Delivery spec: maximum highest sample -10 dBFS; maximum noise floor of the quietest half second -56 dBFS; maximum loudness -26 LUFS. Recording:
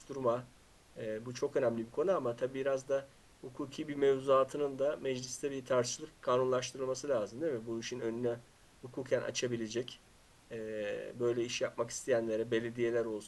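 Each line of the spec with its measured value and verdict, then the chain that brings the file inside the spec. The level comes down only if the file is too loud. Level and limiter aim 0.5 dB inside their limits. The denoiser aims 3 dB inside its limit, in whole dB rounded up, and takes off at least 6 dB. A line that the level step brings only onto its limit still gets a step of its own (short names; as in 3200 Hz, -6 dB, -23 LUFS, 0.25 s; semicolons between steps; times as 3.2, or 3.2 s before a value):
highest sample -17.0 dBFS: OK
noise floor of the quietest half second -62 dBFS: OK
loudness -35.5 LUFS: OK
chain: none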